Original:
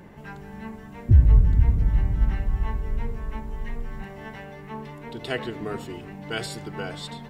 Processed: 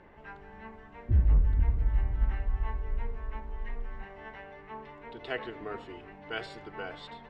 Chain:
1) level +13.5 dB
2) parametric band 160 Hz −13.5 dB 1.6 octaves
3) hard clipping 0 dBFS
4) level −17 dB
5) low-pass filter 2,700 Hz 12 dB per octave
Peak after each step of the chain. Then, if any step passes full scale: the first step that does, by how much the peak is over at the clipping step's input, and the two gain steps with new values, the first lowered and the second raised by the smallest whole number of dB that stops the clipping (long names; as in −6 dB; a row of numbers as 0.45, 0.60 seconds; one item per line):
+8.5, +5.5, 0.0, −17.0, −17.0 dBFS
step 1, 5.5 dB
step 1 +7.5 dB, step 4 −11 dB